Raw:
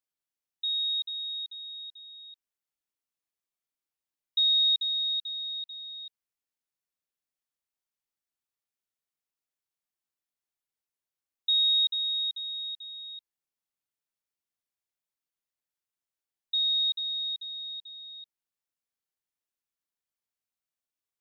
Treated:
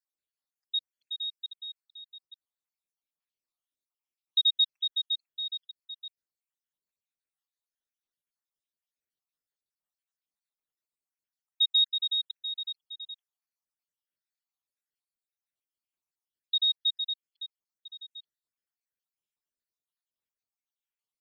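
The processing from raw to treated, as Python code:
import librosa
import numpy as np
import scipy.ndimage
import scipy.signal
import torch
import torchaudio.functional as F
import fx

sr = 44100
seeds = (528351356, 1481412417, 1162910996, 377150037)

y = fx.spec_dropout(x, sr, seeds[0], share_pct=68)
y = fx.peak_eq(y, sr, hz=3600.0, db=3.5, octaves=0.77)
y = y * librosa.db_to_amplitude(-1.0)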